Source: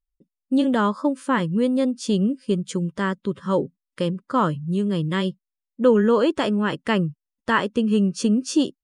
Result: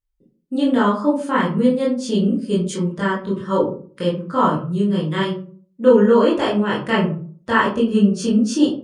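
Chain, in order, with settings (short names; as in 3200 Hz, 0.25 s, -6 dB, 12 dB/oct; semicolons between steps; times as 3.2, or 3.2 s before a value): 2.33–2.75 high shelf 7900 Hz +10 dB; reverb RT60 0.45 s, pre-delay 18 ms, DRR -6.5 dB; gain -4 dB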